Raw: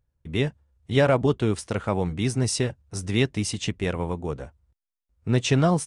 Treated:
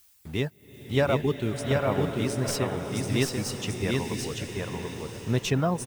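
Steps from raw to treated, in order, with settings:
stylus tracing distortion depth 0.026 ms
in parallel at −8.5 dB: bit reduction 6 bits
on the sum: background noise blue −52 dBFS
reverb reduction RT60 1.5 s
on a send: single-tap delay 738 ms −3 dB
on the sum: slow-attack reverb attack 950 ms, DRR 5.5 dB
level −6.5 dB

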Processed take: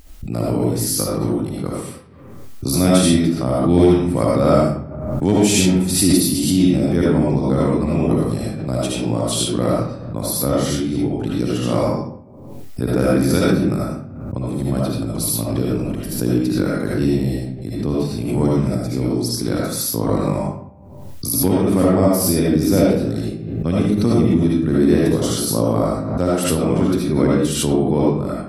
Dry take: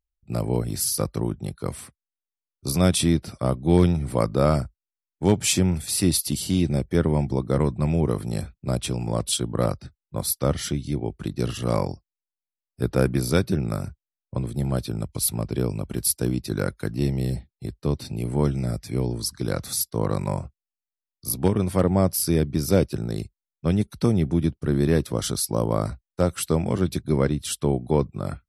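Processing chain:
parametric band 270 Hz +8.5 dB 0.44 octaves
0:15.65–0:16.17: compressor whose output falls as the input rises −29 dBFS, ratio −0.5
comb and all-pass reverb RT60 0.65 s, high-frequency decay 0.65×, pre-delay 35 ms, DRR −5 dB
background raised ahead of every attack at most 44 dB per second
level −1 dB

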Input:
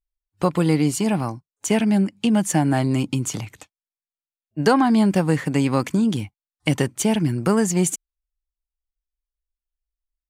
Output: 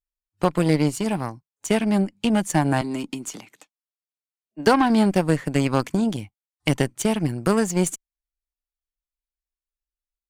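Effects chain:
0:02.81–0:04.67: high-pass filter 200 Hz 24 dB per octave
harmonic generator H 6 −34 dB, 7 −22 dB, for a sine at −4 dBFS

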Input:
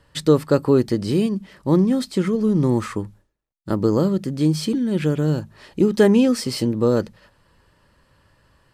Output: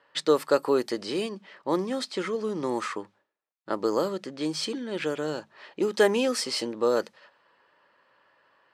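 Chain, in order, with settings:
high-pass filter 540 Hz 12 dB per octave
low-pass that shuts in the quiet parts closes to 2,700 Hz, open at −21 dBFS

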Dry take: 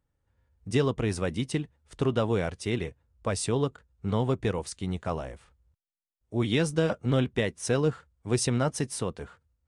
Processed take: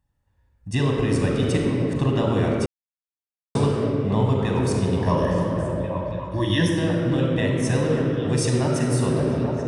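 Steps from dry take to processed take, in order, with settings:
0:04.99–0:06.68: EQ curve with evenly spaced ripples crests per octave 1.2, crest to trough 17 dB
echo through a band-pass that steps 278 ms, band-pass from 290 Hz, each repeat 0.7 octaves, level −2.5 dB
convolution reverb RT60 3.0 s, pre-delay 38 ms, DRR 0 dB
speech leveller within 4 dB 0.5 s
0:02.66–0:03.55: silence

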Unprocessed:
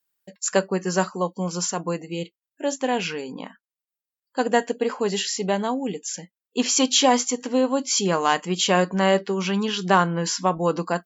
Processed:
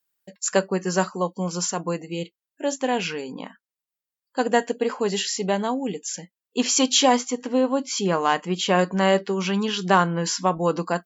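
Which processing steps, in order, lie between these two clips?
0:07.16–0:08.79: high-shelf EQ 4,600 Hz −9.5 dB

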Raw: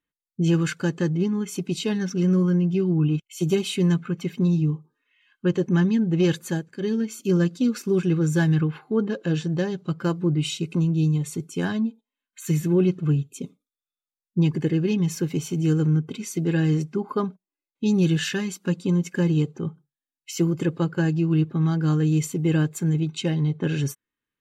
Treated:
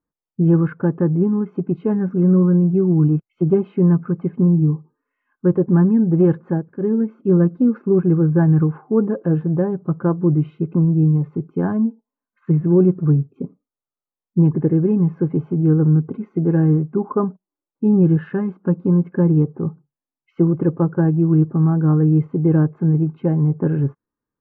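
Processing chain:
low-pass filter 1,200 Hz 24 dB per octave
level +6 dB

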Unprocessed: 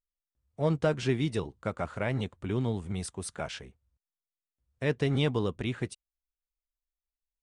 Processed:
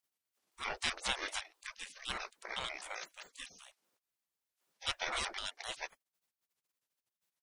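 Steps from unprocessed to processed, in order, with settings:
pitch shifter gated in a rhythm −8 semitones, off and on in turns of 128 ms
gate on every frequency bin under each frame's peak −30 dB weak
level +13.5 dB

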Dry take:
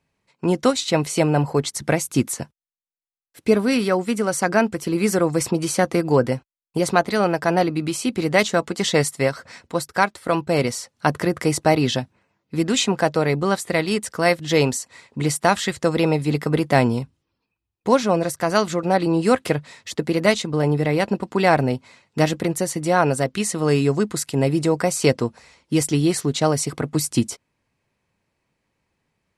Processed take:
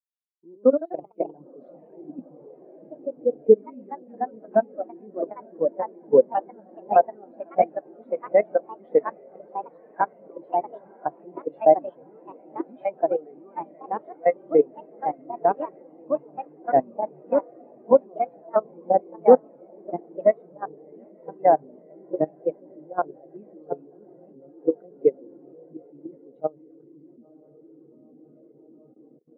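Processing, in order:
three-way crossover with the lows and the highs turned down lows −12 dB, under 190 Hz, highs −21 dB, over 2,700 Hz
feedback delay with all-pass diffusion 919 ms, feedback 71%, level −6 dB
output level in coarse steps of 16 dB
delay with pitch and tempo change per echo 148 ms, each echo +2 semitones, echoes 3
every bin expanded away from the loudest bin 2.5 to 1
level +1.5 dB

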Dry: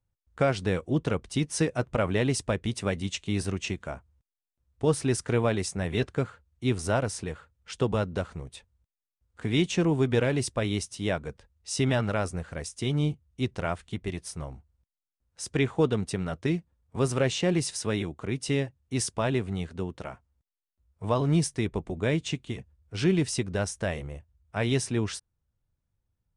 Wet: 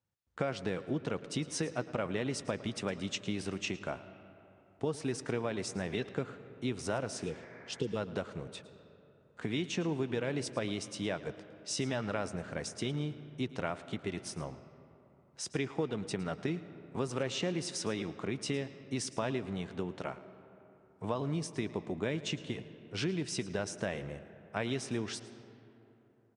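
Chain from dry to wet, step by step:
healed spectral selection 0:07.23–0:07.94, 500–2,400 Hz before
downward compressor, threshold −30 dBFS, peak gain reduction 12 dB
band-pass filter 150–7,300 Hz
single-tap delay 110 ms −18 dB
on a send at −15 dB: convolution reverb RT60 3.3 s, pre-delay 120 ms

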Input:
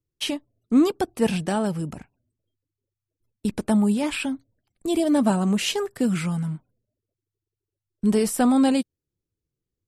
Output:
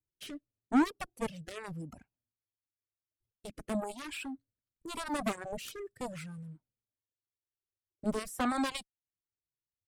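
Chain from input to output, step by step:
harmonic generator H 3 −18 dB, 6 −36 dB, 7 −13 dB, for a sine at −8 dBFS
rotating-speaker cabinet horn 0.9 Hz
reverb reduction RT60 1.6 s
level −8 dB

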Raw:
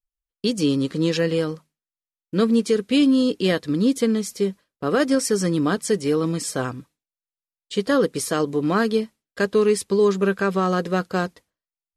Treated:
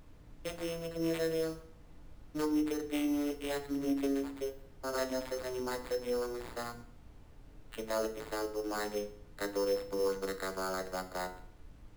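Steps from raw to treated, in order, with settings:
vocoder with a gliding carrier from F3, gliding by −12 semitones
high-pass filter 670 Hz 12 dB per octave
noise gate −55 dBFS, range −8 dB
in parallel at +2 dB: brickwall limiter −29.5 dBFS, peak gain reduction 10 dB
on the sum: sample-rate reduction 5,800 Hz, jitter 0%
background noise brown −44 dBFS
feedback delay network reverb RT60 0.6 s, low-frequency decay 1.4×, high-frequency decay 0.85×, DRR 6 dB
level −9 dB

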